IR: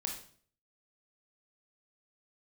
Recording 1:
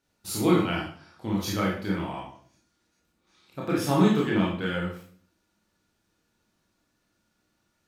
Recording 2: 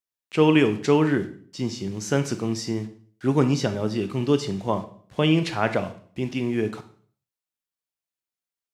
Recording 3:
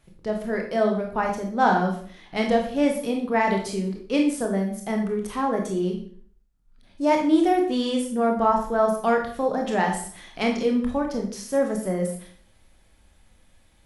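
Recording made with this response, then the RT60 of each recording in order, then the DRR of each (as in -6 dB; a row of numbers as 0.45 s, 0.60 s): 3; 0.50 s, 0.50 s, 0.50 s; -4.0 dB, 9.5 dB, 1.5 dB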